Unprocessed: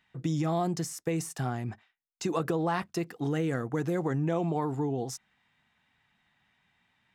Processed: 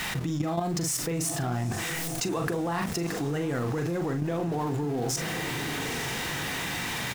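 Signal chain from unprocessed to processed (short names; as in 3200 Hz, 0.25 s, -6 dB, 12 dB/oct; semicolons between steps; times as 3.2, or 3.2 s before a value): zero-crossing step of -38 dBFS; doubler 41 ms -6.5 dB; level quantiser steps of 12 dB; on a send: diffused feedback echo 0.922 s, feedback 46%, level -14.5 dB; on the sum: fast leveller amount 70%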